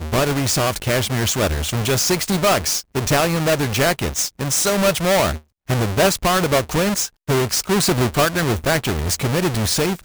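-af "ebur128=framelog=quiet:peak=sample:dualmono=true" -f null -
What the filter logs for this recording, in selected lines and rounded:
Integrated loudness:
  I:         -15.6 LUFS
  Threshold: -25.6 LUFS
Loudness range:
  LRA:         0.7 LU
  Threshold: -35.5 LUFS
  LRA low:   -15.9 LUFS
  LRA high:  -15.2 LUFS
Sample peak:
  Peak:       -8.1 dBFS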